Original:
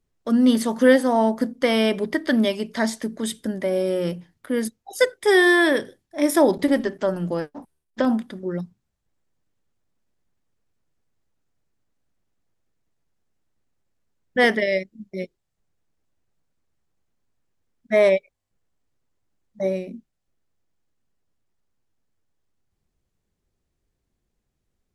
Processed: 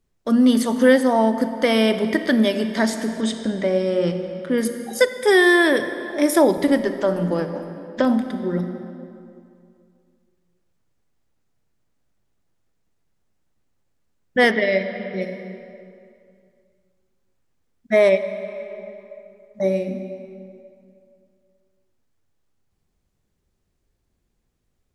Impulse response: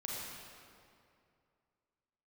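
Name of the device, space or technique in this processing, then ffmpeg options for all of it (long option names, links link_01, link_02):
ducked reverb: -filter_complex "[0:a]asplit=3[link_01][link_02][link_03];[1:a]atrim=start_sample=2205[link_04];[link_02][link_04]afir=irnorm=-1:irlink=0[link_05];[link_03]apad=whole_len=1099980[link_06];[link_05][link_06]sidechaincompress=threshold=-20dB:ratio=10:attack=41:release=1180,volume=-3dB[link_07];[link_01][link_07]amix=inputs=2:normalize=0,asettb=1/sr,asplit=3[link_08][link_09][link_10];[link_08]atrim=end=3.214[link_11];[link_09]atrim=start=3.21:end=4.58,asetpts=PTS-STARTPTS,afade=type=in:duration=0.004:curve=qsin,afade=type=out:start_time=1.366:duration=0.004:curve=qsin,lowpass=frequency=7200:width=0.5412,lowpass=frequency=7200:width=1.3066[link_12];[link_10]atrim=start=4.576[link_13];[link_11][link_12]acrossfade=duration=0.004:curve1=hsin:curve2=qsin[link_14];[link_14][link_13]acrossfade=duration=0.004:curve1=qsin:curve2=hsin,asettb=1/sr,asplit=3[link_15][link_16][link_17];[link_15]atrim=end=14.514[link_18];[link_16]atrim=start=14.51:end=15.22,asetpts=PTS-STARTPTS,afade=type=in:duration=0.004:curve=qsin,afade=type=out:start_time=0.706:duration=0.004:curve=qsin,lowpass=frequency=4700:width=0.5412,lowpass=frequency=4700:width=1.3066[link_19];[link_17]atrim=start=15.216[link_20];[link_18][link_19]acrossfade=duration=0.004:curve1=hsin:curve2=qsin[link_21];[link_21][link_20]acrossfade=duration=0.004:curve1=qsin:curve2=hsin"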